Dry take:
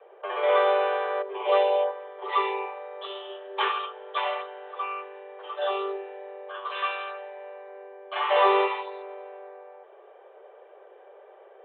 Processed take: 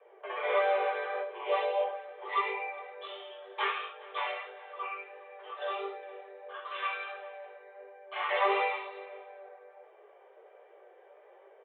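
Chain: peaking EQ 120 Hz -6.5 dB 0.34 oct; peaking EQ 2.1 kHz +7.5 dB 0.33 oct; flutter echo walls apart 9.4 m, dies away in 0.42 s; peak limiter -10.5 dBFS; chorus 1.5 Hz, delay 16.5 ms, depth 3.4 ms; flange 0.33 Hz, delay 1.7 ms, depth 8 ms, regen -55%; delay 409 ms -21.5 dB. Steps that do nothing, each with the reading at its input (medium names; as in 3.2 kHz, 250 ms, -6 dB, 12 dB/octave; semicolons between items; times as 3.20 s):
peaking EQ 120 Hz: input has nothing below 360 Hz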